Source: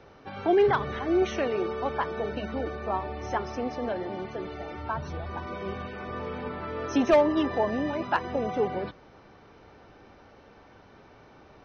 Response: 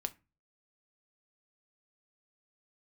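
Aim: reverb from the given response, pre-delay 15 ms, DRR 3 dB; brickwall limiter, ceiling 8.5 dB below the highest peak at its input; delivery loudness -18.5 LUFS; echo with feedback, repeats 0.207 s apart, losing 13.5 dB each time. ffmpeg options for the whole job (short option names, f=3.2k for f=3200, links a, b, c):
-filter_complex "[0:a]alimiter=limit=-22.5dB:level=0:latency=1,aecho=1:1:207|414:0.211|0.0444,asplit=2[a][b];[1:a]atrim=start_sample=2205,adelay=15[c];[b][c]afir=irnorm=-1:irlink=0,volume=-2.5dB[d];[a][d]amix=inputs=2:normalize=0,volume=12dB"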